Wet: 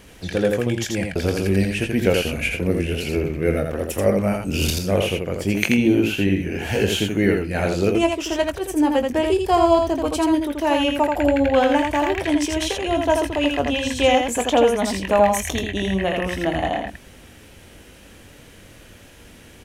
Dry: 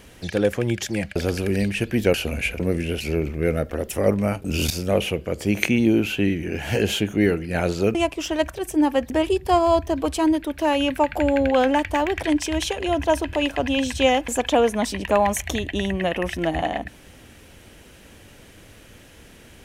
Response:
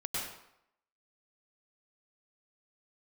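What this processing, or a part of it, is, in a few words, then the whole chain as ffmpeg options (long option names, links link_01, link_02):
slapback doubling: -filter_complex "[0:a]asplit=3[link_01][link_02][link_03];[link_02]adelay=21,volume=-9dB[link_04];[link_03]adelay=83,volume=-4dB[link_05];[link_01][link_04][link_05]amix=inputs=3:normalize=0"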